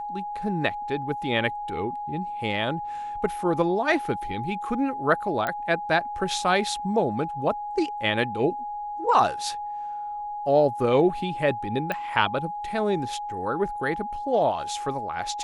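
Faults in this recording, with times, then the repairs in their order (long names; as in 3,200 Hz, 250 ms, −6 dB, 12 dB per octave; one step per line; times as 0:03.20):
whistle 830 Hz −30 dBFS
0:05.47: click −14 dBFS
0:11.92: click −15 dBFS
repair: click removal
notch filter 830 Hz, Q 30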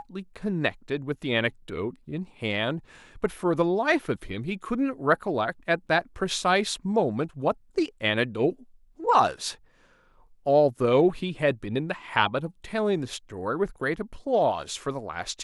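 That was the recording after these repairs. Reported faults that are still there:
none of them is left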